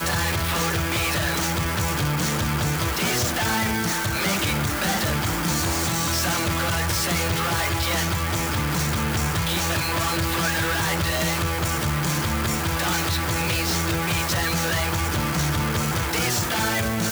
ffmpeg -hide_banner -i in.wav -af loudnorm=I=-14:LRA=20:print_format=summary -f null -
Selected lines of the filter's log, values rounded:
Input Integrated:    -22.7 LUFS
Input True Peak:     -13.0 dBTP
Input LRA:             0.5 LU
Input Threshold:     -32.7 LUFS